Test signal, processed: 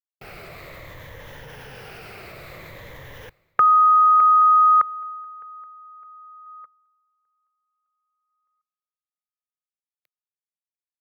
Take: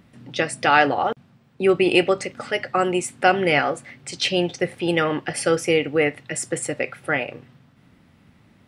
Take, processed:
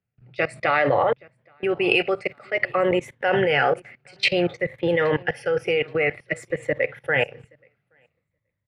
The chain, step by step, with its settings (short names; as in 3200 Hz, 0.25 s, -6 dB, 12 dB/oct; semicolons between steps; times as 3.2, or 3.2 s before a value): moving spectral ripple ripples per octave 1.1, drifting -0.53 Hz, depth 8 dB; graphic EQ 125/250/500/2000/8000 Hz +9/-7/+10/+10/-12 dB; level quantiser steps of 20 dB; feedback echo 0.825 s, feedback 25%, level -23 dB; three-band expander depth 70%